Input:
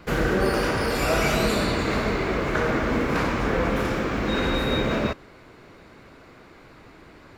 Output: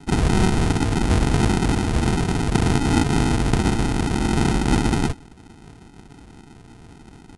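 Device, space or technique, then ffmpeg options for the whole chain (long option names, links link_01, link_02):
crushed at another speed: -af "asetrate=88200,aresample=44100,acrusher=samples=39:mix=1:aa=0.000001,asetrate=22050,aresample=44100,volume=4.5dB"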